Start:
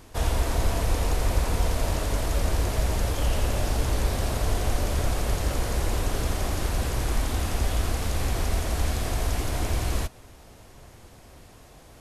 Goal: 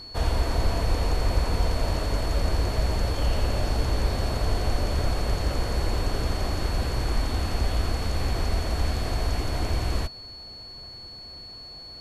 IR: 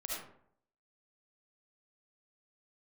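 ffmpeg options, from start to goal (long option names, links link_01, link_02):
-af "aemphasis=mode=reproduction:type=cd,aeval=exprs='val(0)+0.01*sin(2*PI*4400*n/s)':channel_layout=same"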